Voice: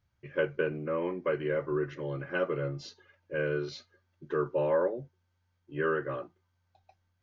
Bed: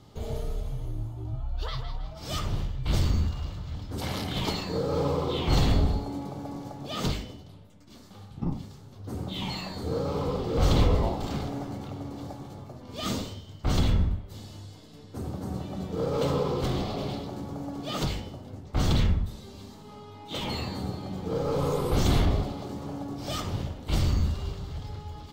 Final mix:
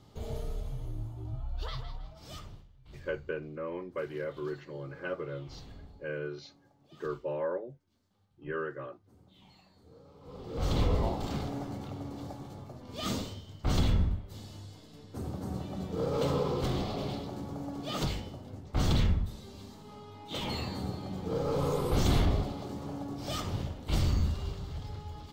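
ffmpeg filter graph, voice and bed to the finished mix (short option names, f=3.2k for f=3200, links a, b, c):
-filter_complex "[0:a]adelay=2700,volume=-6dB[a];[1:a]volume=19dB,afade=t=out:st=1.7:d=0.94:silence=0.0794328,afade=t=in:st=10.21:d=0.89:silence=0.0668344[b];[a][b]amix=inputs=2:normalize=0"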